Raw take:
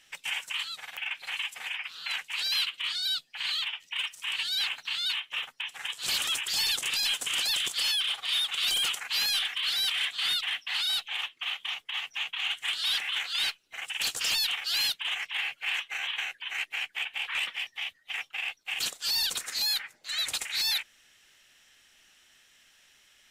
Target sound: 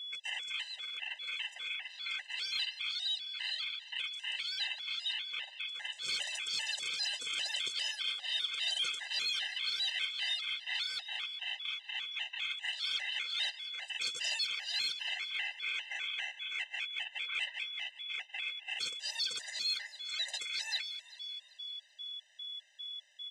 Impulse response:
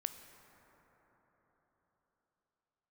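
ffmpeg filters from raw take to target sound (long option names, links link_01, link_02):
-filter_complex "[0:a]aeval=exprs='val(0)+0.0158*sin(2*PI*3400*n/s)':channel_layout=same,highpass=160,equalizer=frequency=210:width_type=q:width=4:gain=-7,equalizer=frequency=310:width_type=q:width=4:gain=-5,equalizer=frequency=580:width_type=q:width=4:gain=4,equalizer=frequency=1100:width_type=q:width=4:gain=-8,equalizer=frequency=2000:width_type=q:width=4:gain=5,lowpass=frequency=7900:width=0.5412,lowpass=frequency=7900:width=1.3066,asplit=2[link_01][link_02];[link_02]asplit=7[link_03][link_04][link_05][link_06][link_07][link_08][link_09];[link_03]adelay=191,afreqshift=39,volume=-15dB[link_10];[link_04]adelay=382,afreqshift=78,volume=-19dB[link_11];[link_05]adelay=573,afreqshift=117,volume=-23dB[link_12];[link_06]adelay=764,afreqshift=156,volume=-27dB[link_13];[link_07]adelay=955,afreqshift=195,volume=-31.1dB[link_14];[link_08]adelay=1146,afreqshift=234,volume=-35.1dB[link_15];[link_09]adelay=1337,afreqshift=273,volume=-39.1dB[link_16];[link_10][link_11][link_12][link_13][link_14][link_15][link_16]amix=inputs=7:normalize=0[link_17];[link_01][link_17]amix=inputs=2:normalize=0,afftfilt=real='re*gt(sin(2*PI*2.5*pts/sr)*(1-2*mod(floor(b*sr/1024/520),2)),0)':imag='im*gt(sin(2*PI*2.5*pts/sr)*(1-2*mod(floor(b*sr/1024/520),2)),0)':win_size=1024:overlap=0.75,volume=-4.5dB"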